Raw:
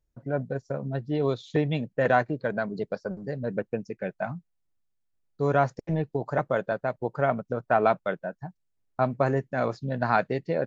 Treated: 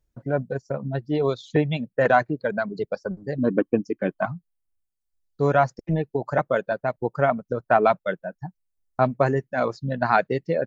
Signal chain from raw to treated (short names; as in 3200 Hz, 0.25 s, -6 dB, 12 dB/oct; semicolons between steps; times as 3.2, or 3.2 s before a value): 3.38–4.26 small resonant body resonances 290/1100/3100 Hz, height 16 dB, ringing for 40 ms; reverb removal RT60 1.5 s; gain +4.5 dB